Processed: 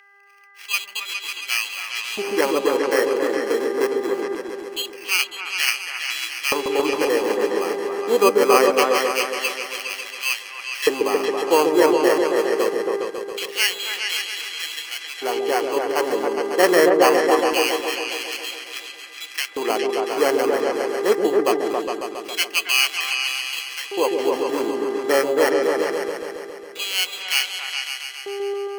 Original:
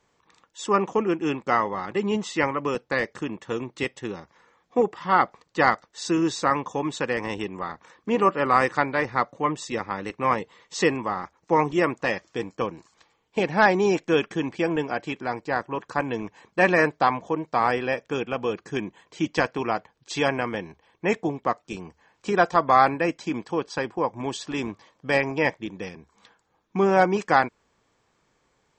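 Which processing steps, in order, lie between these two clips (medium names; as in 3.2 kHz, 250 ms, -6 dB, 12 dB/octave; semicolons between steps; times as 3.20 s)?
peaking EQ 97 Hz -5.5 dB 0.77 oct; sample-and-hold 12×; mains buzz 400 Hz, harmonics 5, -36 dBFS -8 dB/octave; LFO high-pass square 0.23 Hz 400–2700 Hz; on a send: delay with an opening low-pass 137 ms, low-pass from 400 Hz, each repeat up 2 oct, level 0 dB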